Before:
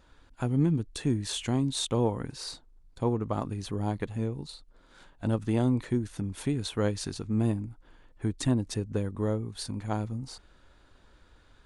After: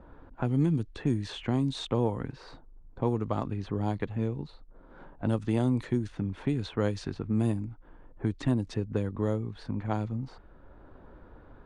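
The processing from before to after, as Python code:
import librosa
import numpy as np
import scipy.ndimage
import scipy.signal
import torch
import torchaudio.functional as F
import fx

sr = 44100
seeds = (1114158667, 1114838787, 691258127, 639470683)

y = fx.env_lowpass(x, sr, base_hz=850.0, full_db=-21.5)
y = fx.band_squash(y, sr, depth_pct=40)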